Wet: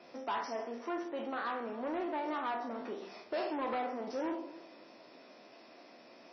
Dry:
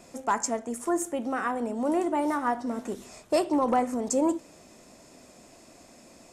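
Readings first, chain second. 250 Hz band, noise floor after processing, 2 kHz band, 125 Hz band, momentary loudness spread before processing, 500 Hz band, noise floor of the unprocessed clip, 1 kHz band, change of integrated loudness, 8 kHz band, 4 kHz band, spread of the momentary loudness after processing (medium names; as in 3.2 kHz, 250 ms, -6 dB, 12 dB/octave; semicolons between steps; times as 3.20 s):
-12.0 dB, -57 dBFS, -6.0 dB, under -10 dB, 8 LU, -9.0 dB, -54 dBFS, -8.5 dB, -10.0 dB, under -25 dB, -5.0 dB, 20 LU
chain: spectral sustain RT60 0.51 s; bass shelf 110 Hz -11 dB; de-hum 48.72 Hz, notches 17; in parallel at -1 dB: compression 8:1, threshold -36 dBFS, peak gain reduction 17 dB; on the sum: saturation -24 dBFS, distortion -10 dB; Chebyshev shaper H 2 -43 dB, 3 -36 dB, 4 -33 dB, 7 -42 dB, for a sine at -24 dBFS; three-band isolator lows -15 dB, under 230 Hz, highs -24 dB, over 5.5 kHz; filtered feedback delay 283 ms, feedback 35%, low-pass 3.9 kHz, level -19 dB; trim -6.5 dB; MP3 24 kbps 24 kHz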